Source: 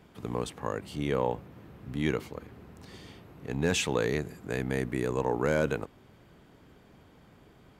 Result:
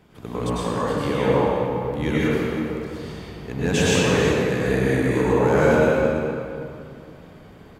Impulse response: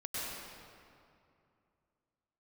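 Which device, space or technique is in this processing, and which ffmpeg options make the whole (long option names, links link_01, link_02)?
cave: -filter_complex "[0:a]aecho=1:1:327:0.237[link_01];[1:a]atrim=start_sample=2205[link_02];[link_01][link_02]afir=irnorm=-1:irlink=0,volume=7dB"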